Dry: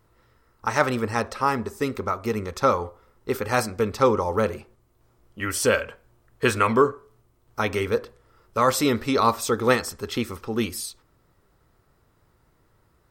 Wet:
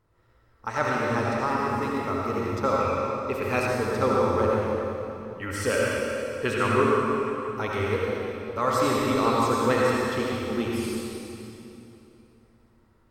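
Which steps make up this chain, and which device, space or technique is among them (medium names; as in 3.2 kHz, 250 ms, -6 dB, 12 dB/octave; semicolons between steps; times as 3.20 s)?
swimming-pool hall (reverberation RT60 3.0 s, pre-delay 64 ms, DRR -4.5 dB; treble shelf 5.6 kHz -8 dB); 2.80–3.67 s: peaking EQ 2.5 kHz +12 dB 0.21 oct; trim -6.5 dB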